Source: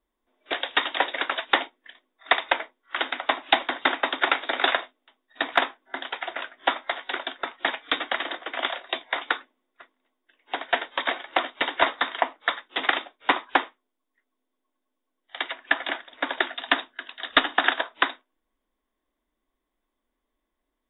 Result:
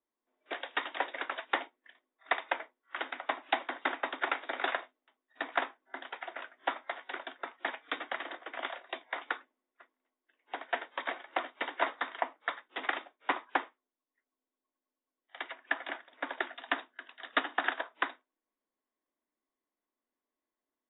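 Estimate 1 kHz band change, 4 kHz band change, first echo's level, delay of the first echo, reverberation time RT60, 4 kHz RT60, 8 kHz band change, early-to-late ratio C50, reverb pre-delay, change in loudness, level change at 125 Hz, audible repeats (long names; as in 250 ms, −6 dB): −9.0 dB, −15.0 dB, no echo audible, no echo audible, no reverb audible, no reverb audible, can't be measured, no reverb audible, no reverb audible, −10.5 dB, can't be measured, no echo audible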